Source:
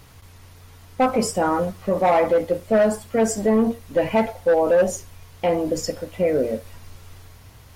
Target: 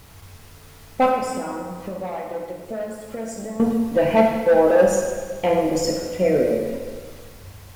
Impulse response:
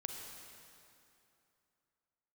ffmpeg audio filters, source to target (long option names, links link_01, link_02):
-filter_complex "[0:a]asettb=1/sr,asplit=3[link_01][link_02][link_03];[link_01]atrim=end=1.094[link_04];[link_02]atrim=start=1.09:end=3.6,asetpts=PTS-STARTPTS,afade=type=in:duration=0.004:curve=qsin,afade=type=out:start_time=2.506:duration=0.004:curve=qsin,acompressor=threshold=-31dB:ratio=8[link_05];[link_03]atrim=start=3.596[link_06];[link_04][link_05]acrossfade=duration=0.004:curve1=hsin:curve2=qsin[link_07];[link_07][link_06]acrossfade=duration=0.004:curve1=qsin:curve2=hsin,acrusher=bits=8:mix=0:aa=0.000001[link_08];[1:a]atrim=start_sample=2205,asetrate=74970,aresample=44100[link_09];[link_08][link_09]afir=irnorm=-1:irlink=0,volume=8.5dB"